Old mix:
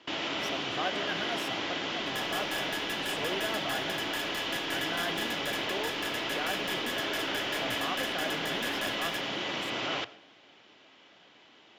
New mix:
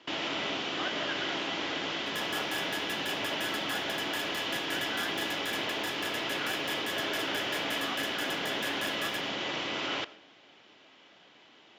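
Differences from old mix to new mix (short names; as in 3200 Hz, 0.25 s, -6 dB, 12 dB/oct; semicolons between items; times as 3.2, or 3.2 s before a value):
speech: add band-pass 1500 Hz, Q 2.1; master: add HPF 69 Hz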